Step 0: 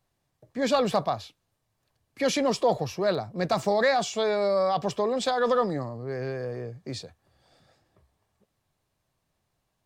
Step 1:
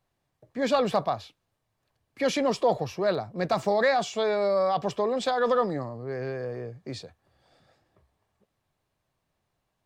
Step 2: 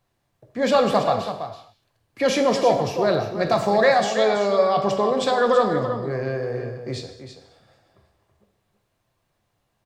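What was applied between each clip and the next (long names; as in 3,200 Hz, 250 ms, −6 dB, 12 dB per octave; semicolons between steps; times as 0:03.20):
bass and treble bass −2 dB, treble −5 dB
single-tap delay 329 ms −9.5 dB; reverb whose tail is shaped and stops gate 270 ms falling, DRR 5 dB; level +4.5 dB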